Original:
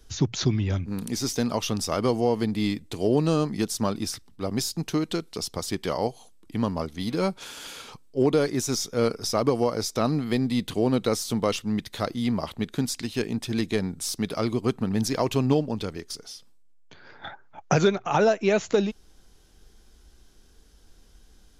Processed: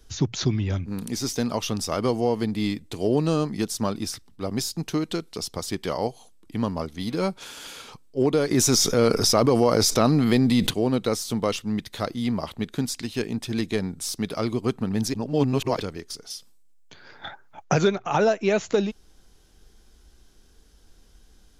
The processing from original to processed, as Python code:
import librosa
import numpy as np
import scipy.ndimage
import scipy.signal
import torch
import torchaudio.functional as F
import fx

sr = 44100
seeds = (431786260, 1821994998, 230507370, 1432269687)

y = fx.env_flatten(x, sr, amount_pct=70, at=(8.5, 10.69), fade=0.02)
y = fx.high_shelf(y, sr, hz=4300.0, db=9.5, at=(16.3, 17.64))
y = fx.edit(y, sr, fx.reverse_span(start_s=15.14, length_s=0.66), tone=tone)